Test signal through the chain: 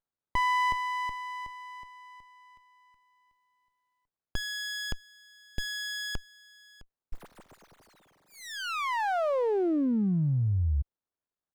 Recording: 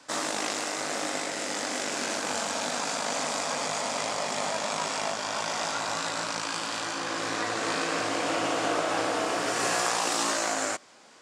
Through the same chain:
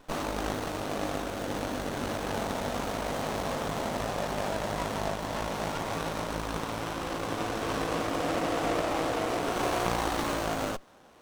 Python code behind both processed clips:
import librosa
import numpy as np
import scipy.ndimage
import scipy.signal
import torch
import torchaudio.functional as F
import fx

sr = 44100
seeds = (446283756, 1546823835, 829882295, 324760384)

y = fx.running_max(x, sr, window=17)